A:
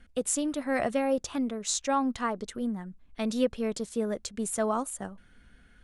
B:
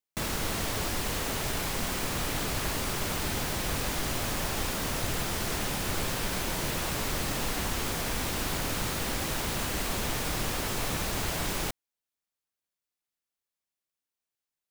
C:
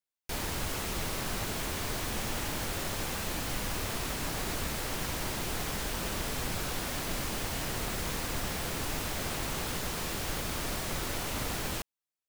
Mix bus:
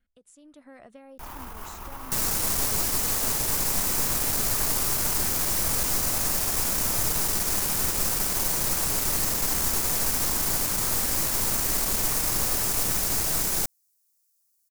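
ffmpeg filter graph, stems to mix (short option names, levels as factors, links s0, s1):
-filter_complex "[0:a]acompressor=threshold=0.0141:ratio=4,volume=0.141[s0];[1:a]acrossover=split=2900[s1][s2];[s2]acompressor=threshold=0.00794:ratio=4:attack=1:release=60[s3];[s1][s3]amix=inputs=2:normalize=0,aexciter=amount=9.3:drive=3.4:freq=4700,adelay=1950,volume=0.447[s4];[2:a]alimiter=level_in=2.11:limit=0.0631:level=0:latency=1,volume=0.473,equalizer=f=125:t=o:w=1:g=-11,equalizer=f=250:t=o:w=1:g=-4,equalizer=f=500:t=o:w=1:g=-11,equalizer=f=1000:t=o:w=1:g=8,equalizer=f=2000:t=o:w=1:g=-7,equalizer=f=4000:t=o:w=1:g=-12,equalizer=f=8000:t=o:w=1:g=-9,adelay=900,volume=0.708[s5];[s0][s4][s5]amix=inputs=3:normalize=0,dynaudnorm=f=180:g=5:m=3.55,aeval=exprs='(tanh(10*val(0)+0.7)-tanh(0.7))/10':c=same"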